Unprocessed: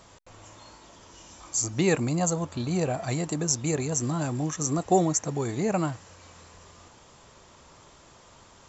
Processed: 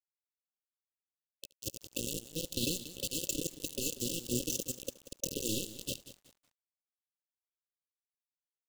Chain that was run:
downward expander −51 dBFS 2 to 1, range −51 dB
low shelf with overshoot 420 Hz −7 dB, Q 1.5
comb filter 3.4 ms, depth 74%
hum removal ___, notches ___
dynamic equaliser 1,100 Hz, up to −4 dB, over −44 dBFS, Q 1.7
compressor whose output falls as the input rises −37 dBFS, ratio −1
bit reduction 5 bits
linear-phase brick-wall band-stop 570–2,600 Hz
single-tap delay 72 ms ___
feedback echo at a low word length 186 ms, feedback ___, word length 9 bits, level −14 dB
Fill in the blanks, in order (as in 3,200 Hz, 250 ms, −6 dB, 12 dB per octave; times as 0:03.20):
285.2 Hz, 12, −22 dB, 35%